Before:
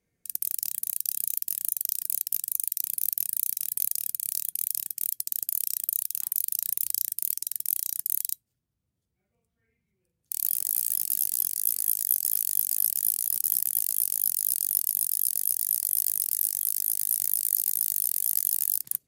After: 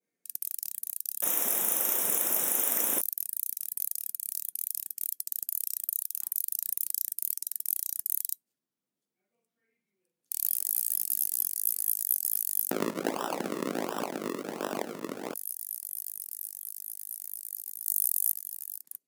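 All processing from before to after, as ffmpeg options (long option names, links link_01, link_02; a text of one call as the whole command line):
ffmpeg -i in.wav -filter_complex "[0:a]asettb=1/sr,asplit=3[link_01][link_02][link_03];[link_01]atrim=end=1.224[link_04];[link_02]atrim=start=1.22:end=3.01,asetpts=PTS-STARTPTS,afade=type=in:duration=0.004:curve=qsin,afade=type=out:start_time=1.786:duration=0.004:curve=qsin,aeval=exprs='val(0)+0.5*0.126*sgn(val(0))':channel_layout=same,asuperstop=centerf=4500:order=12:qfactor=3.2,equalizer=frequency=450:width_type=o:width=2.6:gain=9[link_05];[link_03]atrim=start=3.006[link_06];[link_04][link_05]acrossfade=duration=0.004:curve1=hsin:curve2=qsin[link_07];[link_07][link_06]acrossfade=duration=0.004:curve1=qsin:curve2=hsin,asettb=1/sr,asplit=3[link_08][link_09][link_10];[link_08]atrim=end=12.714[link_11];[link_09]atrim=start=12.71:end=15.34,asetpts=PTS-STARTPTS,afade=type=in:duration=0.004:curve=qsin,afade=type=out:start_time=2.626:duration=0.004:curve=qsin,aeval=exprs='val(0)+0.5*0.0398*sgn(val(0))':channel_layout=same,acrusher=samples=39:mix=1:aa=0.000001:lfo=1:lforange=39:lforate=1.4[link_12];[link_10]atrim=start=15.336[link_13];[link_11][link_12]acrossfade=duration=0.004:curve1=hsin:curve2=qsin[link_14];[link_14][link_13]acrossfade=duration=0.004:curve1=qsin:curve2=hsin,asettb=1/sr,asplit=3[link_15][link_16][link_17];[link_15]atrim=end=17.864[link_18];[link_16]atrim=start=17.86:end=18.32,asetpts=PTS-STARTPTS,afade=type=in:duration=0.004:curve=qsin,afade=type=out:start_time=0.456:duration=0.004:curve=qsin,bass=frequency=250:gain=13,treble=frequency=4000:gain=13,bandreject=frequency=830:width=5.1[link_19];[link_17]atrim=start=18.316[link_20];[link_18][link_19]acrossfade=duration=0.004:curve1=hsin:curve2=qsin[link_21];[link_21][link_20]acrossfade=duration=0.004:curve1=qsin:curve2=hsin,highpass=frequency=220:width=0.5412,highpass=frequency=220:width=1.3066,adynamicequalizer=threshold=0.00631:dfrequency=3500:dqfactor=0.82:tfrequency=3500:tqfactor=0.82:attack=5:release=100:ratio=0.375:range=2.5:mode=cutabove:tftype=bell,dynaudnorm=framelen=800:gausssize=11:maxgain=11.5dB,volume=-5.5dB" out.wav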